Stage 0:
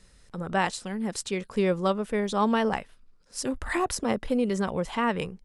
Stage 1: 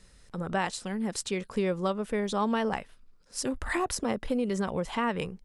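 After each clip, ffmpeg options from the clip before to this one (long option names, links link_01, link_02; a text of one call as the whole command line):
ffmpeg -i in.wav -af "acompressor=threshold=-27dB:ratio=2" out.wav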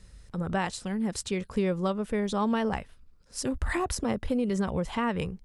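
ffmpeg -i in.wav -af "equalizer=frequency=64:width_type=o:width=2.3:gain=12,volume=-1dB" out.wav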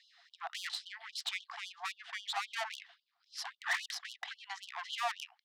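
ffmpeg -i in.wav -af "highpass=frequency=460:width=0.5412,highpass=frequency=460:width=1.3066,equalizer=frequency=470:width_type=q:width=4:gain=-5,equalizer=frequency=680:width_type=q:width=4:gain=8,equalizer=frequency=980:width_type=q:width=4:gain=-7,equalizer=frequency=1400:width_type=q:width=4:gain=-6,equalizer=frequency=2500:width_type=q:width=4:gain=-6,lowpass=frequency=4100:width=0.5412,lowpass=frequency=4100:width=1.3066,aeval=exprs='(tanh(70.8*val(0)+0.65)-tanh(0.65))/70.8':channel_layout=same,afftfilt=real='re*gte(b*sr/1024,660*pow(2900/660,0.5+0.5*sin(2*PI*3.7*pts/sr)))':imag='im*gte(b*sr/1024,660*pow(2900/660,0.5+0.5*sin(2*PI*3.7*pts/sr)))':win_size=1024:overlap=0.75,volume=10dB" out.wav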